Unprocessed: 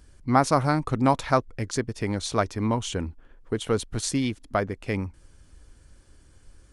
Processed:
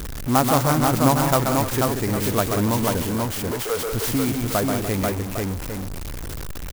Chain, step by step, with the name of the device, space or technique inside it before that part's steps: 3.02–3.87 HPF 470 Hz 24 dB/oct; tapped delay 0.133/0.183/0.295/0.489/0.804 s -6.5/-10/-16.5/-3.5/-13.5 dB; early CD player with a faulty converter (zero-crossing step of -25 dBFS; clock jitter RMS 0.073 ms)

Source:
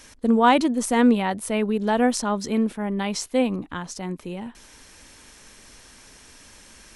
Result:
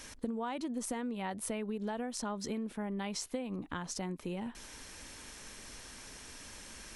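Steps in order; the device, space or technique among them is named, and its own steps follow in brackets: serial compression, leveller first (compressor, threshold -21 dBFS, peak gain reduction 9.5 dB; compressor 6:1, threshold -34 dBFS, peak gain reduction 13.5 dB); gain -1 dB

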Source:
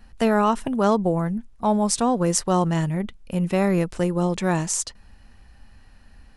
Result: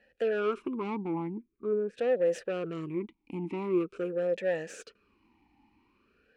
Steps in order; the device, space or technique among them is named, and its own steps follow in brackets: 1.37–1.97 EQ curve 420 Hz 0 dB, 800 Hz -25 dB, 1700 Hz -2 dB, 5000 Hz -25 dB; talk box (tube stage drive 22 dB, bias 0.5; vowel sweep e-u 0.45 Hz); gain +7.5 dB

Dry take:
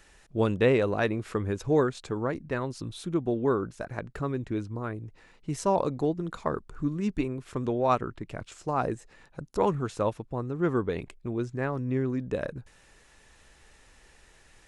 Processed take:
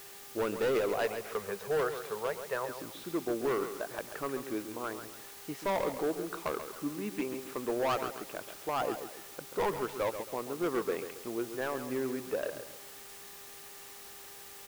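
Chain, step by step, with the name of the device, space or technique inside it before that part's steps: 0.94–2.69 Chebyshev band-stop 190–430 Hz, order 2; aircraft radio (BPF 380–2700 Hz; hard clip -26.5 dBFS, distortion -8 dB; buzz 400 Hz, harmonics 3, -58 dBFS -5 dB/oct; white noise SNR 14 dB); feedback echo 0.136 s, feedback 36%, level -9.5 dB

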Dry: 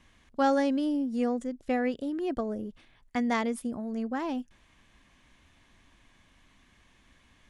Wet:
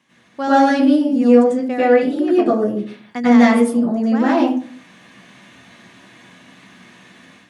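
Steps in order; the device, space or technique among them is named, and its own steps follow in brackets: far laptop microphone (reverb RT60 0.45 s, pre-delay 89 ms, DRR -10 dB; HPF 150 Hz 24 dB/oct; AGC gain up to 8.5 dB)

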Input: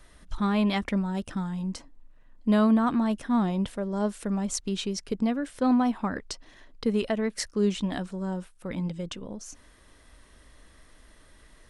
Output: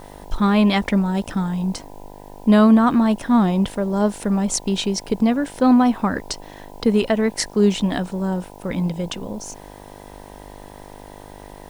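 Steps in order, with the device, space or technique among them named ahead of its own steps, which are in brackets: video cassette with head-switching buzz (buzz 50 Hz, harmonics 20, -50 dBFS 0 dB/oct; white noise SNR 36 dB); gain +8.5 dB

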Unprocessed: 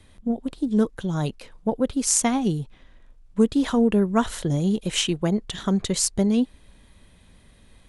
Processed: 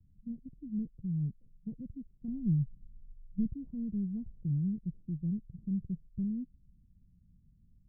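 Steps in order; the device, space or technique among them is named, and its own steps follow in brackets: overdriven synthesiser ladder filter (soft clip -14.5 dBFS, distortion -16 dB; ladder low-pass 200 Hz, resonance 40%); 2.28–3.54 tilt -2 dB/oct; gain -2.5 dB

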